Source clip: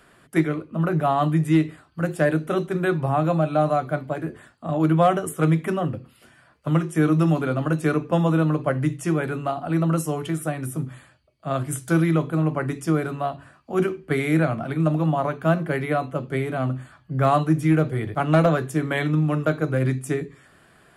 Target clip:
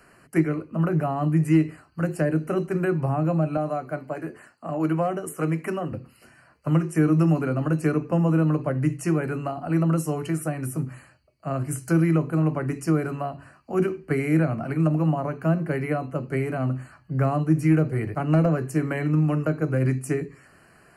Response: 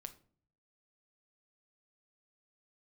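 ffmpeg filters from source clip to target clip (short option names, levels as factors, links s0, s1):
-filter_complex "[0:a]asettb=1/sr,asplit=3[s0][s1][s2];[s0]atrim=end=3.574[s3];[s1]atrim=start=3.57:end=5.92,asetpts=PTS-STARTPTS,afade=t=in:d=0.004:c=qsin,afade=t=out:st=2.346:d=0.004:c=qsin,highpass=f=310:p=1[s4];[s2]atrim=start=5.916[s5];[s3][s4]acrossfade=d=0.004:c1=hsin:c2=qsin[s6];[s6][s5]acrossfade=d=0.004:c1=qsin:c2=hsin,acrossover=split=460[s7][s8];[s8]acompressor=threshold=0.0282:ratio=3[s9];[s7][s9]amix=inputs=2:normalize=0,asuperstop=centerf=3500:order=12:qfactor=3.5"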